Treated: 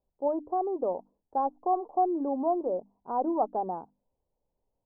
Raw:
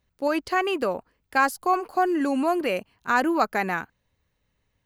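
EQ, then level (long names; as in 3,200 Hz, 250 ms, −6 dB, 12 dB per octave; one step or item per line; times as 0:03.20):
Butterworth low-pass 900 Hz 48 dB per octave
parametric band 99 Hz −14.5 dB 2.8 octaves
mains-hum notches 50/100/150/200/250/300 Hz
0.0 dB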